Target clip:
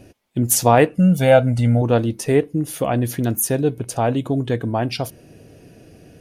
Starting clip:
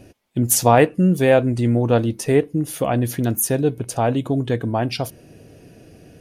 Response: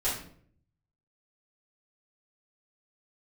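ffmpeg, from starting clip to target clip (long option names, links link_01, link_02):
-filter_complex "[0:a]asettb=1/sr,asplit=3[link_01][link_02][link_03];[link_01]atrim=end=0.954[link_04];[link_02]atrim=start=0.95:end=1.82,asetpts=PTS-STARTPTS,afade=type=in:duration=0.004:curve=qsin,afade=type=out:start_time=0.866:duration=0.004:curve=qsin,aecho=1:1:1.4:0.82,atrim=end_sample=38367[link_05];[link_03]atrim=start=1.816[link_06];[link_04][link_05]acrossfade=duration=0.004:curve1=hsin:curve2=qsin[link_07];[link_07][link_06]acrossfade=duration=0.004:curve1=qsin:curve2=hsin"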